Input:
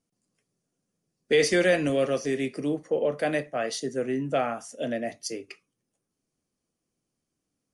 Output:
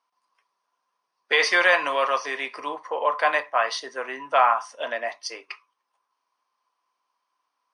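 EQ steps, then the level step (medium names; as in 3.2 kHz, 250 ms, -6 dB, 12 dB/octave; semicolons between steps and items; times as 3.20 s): Savitzky-Golay filter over 15 samples; resonant high-pass 1 kHz, resonance Q 12; +6.0 dB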